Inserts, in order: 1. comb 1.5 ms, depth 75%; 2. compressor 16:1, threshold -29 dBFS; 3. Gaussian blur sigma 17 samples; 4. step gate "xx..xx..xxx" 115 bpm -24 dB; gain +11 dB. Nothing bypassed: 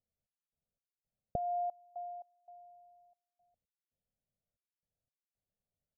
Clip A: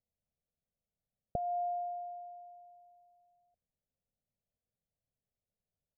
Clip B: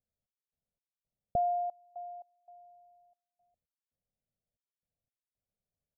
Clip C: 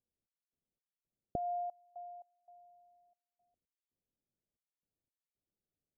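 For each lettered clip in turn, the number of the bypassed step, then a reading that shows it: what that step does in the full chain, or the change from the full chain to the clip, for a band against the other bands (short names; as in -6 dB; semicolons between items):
4, momentary loudness spread change -3 LU; 2, crest factor change -3.0 dB; 1, crest factor change +2.5 dB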